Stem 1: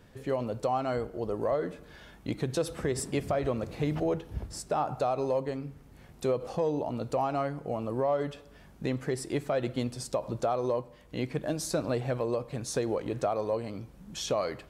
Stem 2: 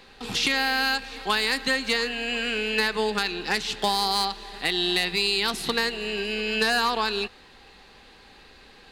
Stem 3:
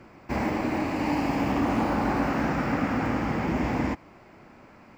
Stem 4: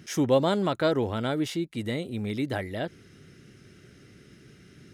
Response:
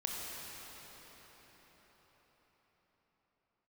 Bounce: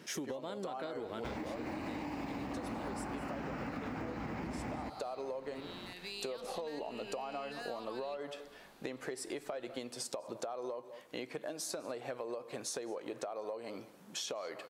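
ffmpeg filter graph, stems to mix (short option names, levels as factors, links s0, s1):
-filter_complex "[0:a]highpass=380,volume=1.26,asplit=2[s0][s1];[s1]volume=0.0794[s2];[1:a]alimiter=limit=0.15:level=0:latency=1,adelay=900,volume=0.178,afade=t=in:st=5.87:d=0.33:silence=0.375837[s3];[2:a]adelay=950,volume=1.26[s4];[3:a]highpass=230,volume=0.75,asplit=2[s5][s6];[s6]volume=0.0944[s7];[s0][s4][s5]amix=inputs=3:normalize=0,acompressor=threshold=0.0447:ratio=6,volume=1[s8];[s2][s7]amix=inputs=2:normalize=0,aecho=0:1:200:1[s9];[s3][s8][s9]amix=inputs=3:normalize=0,acompressor=threshold=0.0141:ratio=10"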